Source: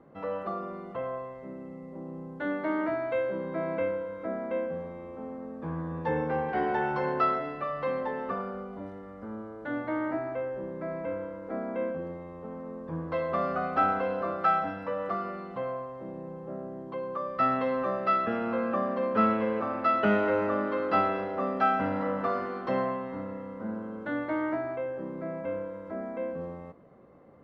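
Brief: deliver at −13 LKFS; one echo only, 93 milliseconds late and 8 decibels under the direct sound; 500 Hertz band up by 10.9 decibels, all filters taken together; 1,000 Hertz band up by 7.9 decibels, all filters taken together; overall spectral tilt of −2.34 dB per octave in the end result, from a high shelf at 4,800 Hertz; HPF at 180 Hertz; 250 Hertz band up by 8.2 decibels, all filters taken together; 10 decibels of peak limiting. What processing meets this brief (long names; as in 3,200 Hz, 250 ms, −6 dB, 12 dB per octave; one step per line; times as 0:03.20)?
high-pass filter 180 Hz
parametric band 250 Hz +8.5 dB
parametric band 500 Hz +8.5 dB
parametric band 1,000 Hz +8 dB
high-shelf EQ 4,800 Hz +3 dB
brickwall limiter −15 dBFS
single-tap delay 93 ms −8 dB
level +12 dB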